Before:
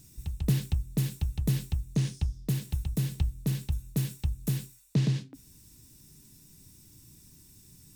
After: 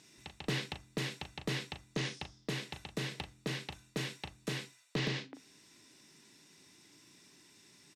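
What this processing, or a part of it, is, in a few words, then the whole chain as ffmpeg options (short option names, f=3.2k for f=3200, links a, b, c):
megaphone: -filter_complex "[0:a]highpass=460,lowpass=3.9k,equalizer=f=2k:t=o:w=0.24:g=5,asoftclip=type=hard:threshold=-33.5dB,asplit=2[a][b];[b]adelay=38,volume=-9dB[c];[a][c]amix=inputs=2:normalize=0,volume=6.5dB"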